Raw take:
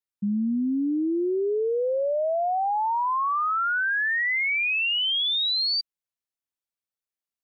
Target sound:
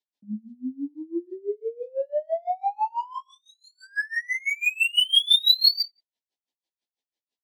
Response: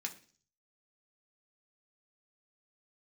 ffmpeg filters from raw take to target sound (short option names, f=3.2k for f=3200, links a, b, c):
-filter_complex "[0:a]highpass=f=220:w=0.5412,highpass=f=220:w=1.3066,highshelf=f=2.9k:t=q:w=1.5:g=7,acrossover=split=960|2800[a][b][c];[a]acompressor=threshold=-40dB:ratio=4[d];[b]acompressor=threshold=-40dB:ratio=4[e];[c]acompressor=threshold=-20dB:ratio=4[f];[d][e][f]amix=inputs=3:normalize=0,asplit=2[g][h];[h]alimiter=level_in=3dB:limit=-24dB:level=0:latency=1,volume=-3dB,volume=0.5dB[i];[g][i]amix=inputs=2:normalize=0,adynamicsmooth=sensitivity=7:basefreq=3.3k,asuperstop=centerf=1300:order=20:qfactor=2.2,asplit=2[j][k];[k]adelay=15,volume=-2.5dB[l];[j][l]amix=inputs=2:normalize=0,asplit=2[m][n];[n]adelay=90,lowpass=f=2k:p=1,volume=-13.5dB,asplit=2[o][p];[p]adelay=90,lowpass=f=2k:p=1,volume=0.16[q];[m][o][q]amix=inputs=3:normalize=0,aeval=exprs='val(0)*pow(10,-26*(0.5-0.5*cos(2*PI*6*n/s))/20)':c=same,volume=2.5dB"